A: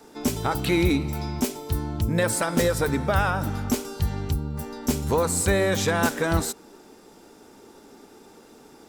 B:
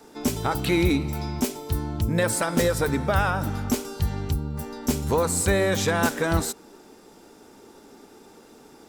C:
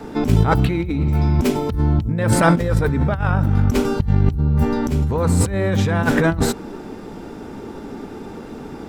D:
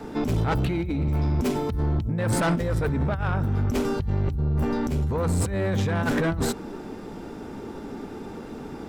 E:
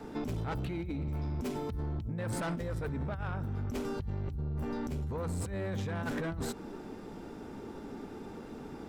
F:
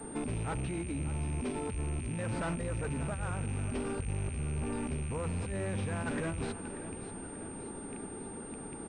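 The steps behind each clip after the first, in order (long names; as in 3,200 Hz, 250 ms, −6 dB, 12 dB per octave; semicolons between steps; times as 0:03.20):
no processing that can be heard
bass and treble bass +10 dB, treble −13 dB; compressor whose output falls as the input rises −25 dBFS, ratio −1; level +7.5 dB
soft clipping −15 dBFS, distortion −11 dB; level −3.5 dB
downward compressor, threshold −25 dBFS, peak gain reduction 5 dB; level −7.5 dB
loose part that buzzes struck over −41 dBFS, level −38 dBFS; repeating echo 587 ms, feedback 58%, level −13 dB; switching amplifier with a slow clock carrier 8,700 Hz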